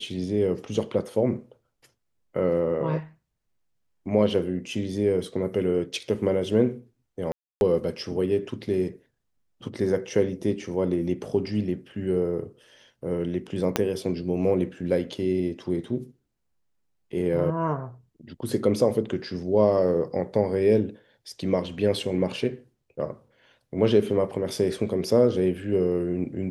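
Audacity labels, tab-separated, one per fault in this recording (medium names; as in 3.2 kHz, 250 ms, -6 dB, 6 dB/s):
7.320000	7.610000	dropout 291 ms
13.760000	13.760000	pop -6 dBFS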